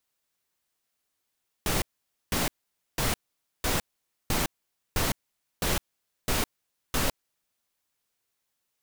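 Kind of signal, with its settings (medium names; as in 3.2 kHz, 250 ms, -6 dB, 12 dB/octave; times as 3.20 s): noise bursts pink, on 0.16 s, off 0.50 s, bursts 9, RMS -26 dBFS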